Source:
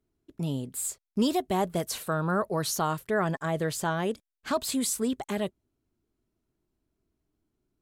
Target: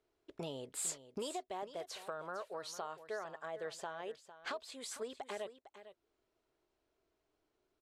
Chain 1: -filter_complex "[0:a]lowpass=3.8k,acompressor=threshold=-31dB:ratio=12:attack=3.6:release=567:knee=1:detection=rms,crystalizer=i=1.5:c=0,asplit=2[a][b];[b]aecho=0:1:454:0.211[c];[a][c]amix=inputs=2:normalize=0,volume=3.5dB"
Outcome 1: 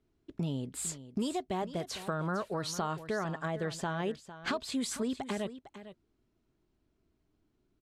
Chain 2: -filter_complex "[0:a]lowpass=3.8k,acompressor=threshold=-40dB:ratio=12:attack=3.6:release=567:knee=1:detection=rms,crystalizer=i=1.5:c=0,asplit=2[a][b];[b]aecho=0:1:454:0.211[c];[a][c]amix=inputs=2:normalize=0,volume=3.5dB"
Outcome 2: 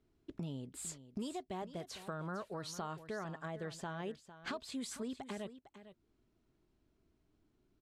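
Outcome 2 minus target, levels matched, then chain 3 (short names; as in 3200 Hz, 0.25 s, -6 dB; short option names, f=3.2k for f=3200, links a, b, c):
250 Hz band +8.5 dB
-filter_complex "[0:a]lowpass=3.8k,lowshelf=f=330:t=q:w=1.5:g=-13.5,acompressor=threshold=-40dB:ratio=12:attack=3.6:release=567:knee=1:detection=rms,crystalizer=i=1.5:c=0,asplit=2[a][b];[b]aecho=0:1:454:0.211[c];[a][c]amix=inputs=2:normalize=0,volume=3.5dB"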